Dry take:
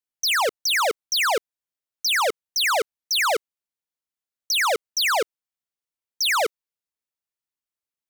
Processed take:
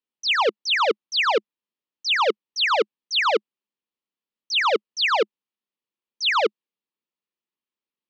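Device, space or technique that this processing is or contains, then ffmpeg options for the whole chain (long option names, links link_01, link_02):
kitchen radio: -af "highpass=200,equalizer=frequency=210:width_type=q:width=4:gain=7,equalizer=frequency=350:width_type=q:width=4:gain=3,equalizer=frequency=690:width_type=q:width=4:gain=-10,equalizer=frequency=1500:width_type=q:width=4:gain=-9,equalizer=frequency=2100:width_type=q:width=4:gain=-5,equalizer=frequency=3700:width_type=q:width=4:gain=-3,lowpass=frequency=3900:width=0.5412,lowpass=frequency=3900:width=1.3066,volume=5dB"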